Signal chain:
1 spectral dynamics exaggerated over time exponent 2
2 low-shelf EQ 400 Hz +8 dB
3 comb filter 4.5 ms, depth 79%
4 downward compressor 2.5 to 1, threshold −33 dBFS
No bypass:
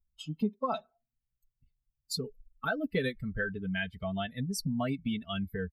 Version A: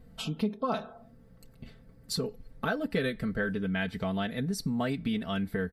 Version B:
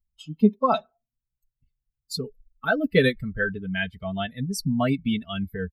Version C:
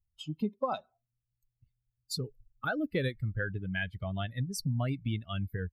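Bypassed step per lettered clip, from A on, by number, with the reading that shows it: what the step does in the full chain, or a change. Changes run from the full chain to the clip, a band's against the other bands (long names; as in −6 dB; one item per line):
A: 1, change in momentary loudness spread +5 LU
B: 4, average gain reduction 6.0 dB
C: 3, 125 Hz band +6.0 dB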